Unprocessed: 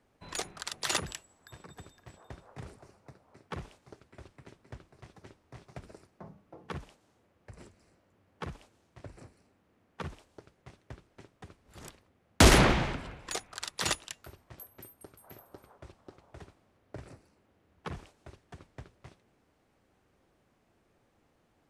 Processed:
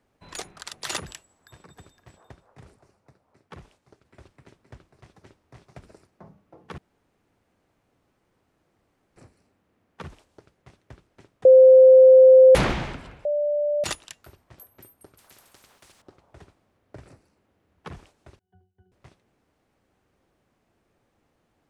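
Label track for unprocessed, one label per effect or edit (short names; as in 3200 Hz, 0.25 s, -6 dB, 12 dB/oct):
2.320000	4.050000	gain -4.5 dB
6.780000	9.160000	room tone
11.450000	12.550000	bleep 520 Hz -7.5 dBFS
13.250000	13.840000	bleep 589 Hz -20.5 dBFS
15.180000	16.020000	spectral compressor 4:1
18.390000	18.920000	octave resonator F#, decay 0.31 s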